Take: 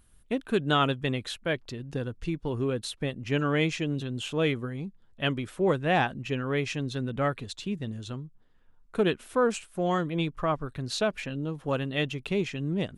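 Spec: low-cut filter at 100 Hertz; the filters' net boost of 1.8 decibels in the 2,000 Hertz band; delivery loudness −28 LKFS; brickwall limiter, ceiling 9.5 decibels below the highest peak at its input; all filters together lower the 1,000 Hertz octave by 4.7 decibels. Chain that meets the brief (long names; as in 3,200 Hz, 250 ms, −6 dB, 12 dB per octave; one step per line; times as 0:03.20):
high-pass filter 100 Hz
parametric band 1,000 Hz −8.5 dB
parametric band 2,000 Hz +5 dB
level +5 dB
brickwall limiter −16.5 dBFS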